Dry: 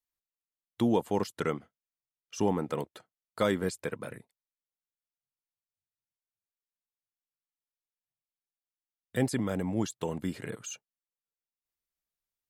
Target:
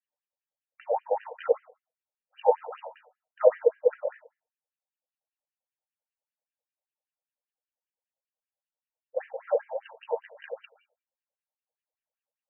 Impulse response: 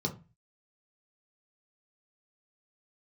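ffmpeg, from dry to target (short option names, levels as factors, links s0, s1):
-filter_complex "[0:a]highpass=f=450:t=q:w=4.9[s0];[1:a]atrim=start_sample=2205,afade=t=out:st=0.25:d=0.01,atrim=end_sample=11466,asetrate=32634,aresample=44100[s1];[s0][s1]afir=irnorm=-1:irlink=0,afftfilt=real='re*between(b*sr/1024,660*pow(2200/660,0.5+0.5*sin(2*PI*5.1*pts/sr))/1.41,660*pow(2200/660,0.5+0.5*sin(2*PI*5.1*pts/sr))*1.41)':imag='im*between(b*sr/1024,660*pow(2200/660,0.5+0.5*sin(2*PI*5.1*pts/sr))/1.41,660*pow(2200/660,0.5+0.5*sin(2*PI*5.1*pts/sr))*1.41)':win_size=1024:overlap=0.75,volume=0.841"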